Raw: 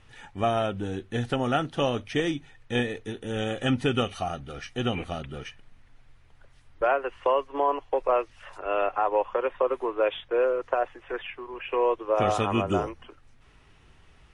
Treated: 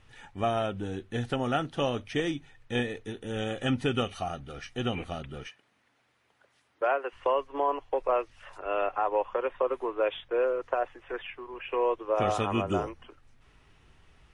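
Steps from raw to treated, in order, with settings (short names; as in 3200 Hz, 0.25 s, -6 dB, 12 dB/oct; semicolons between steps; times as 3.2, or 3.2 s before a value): 5.47–7.13 HPF 270 Hz 12 dB/oct; gain -3 dB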